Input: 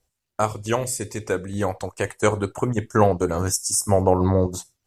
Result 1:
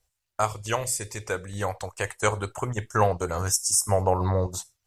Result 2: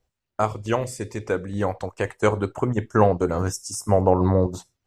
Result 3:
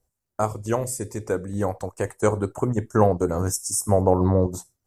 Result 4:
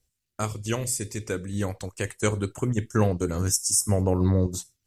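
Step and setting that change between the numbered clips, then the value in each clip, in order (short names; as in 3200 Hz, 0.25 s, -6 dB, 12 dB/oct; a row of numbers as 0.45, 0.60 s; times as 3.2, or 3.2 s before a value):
bell, frequency: 260, 11000, 3100, 800 Hz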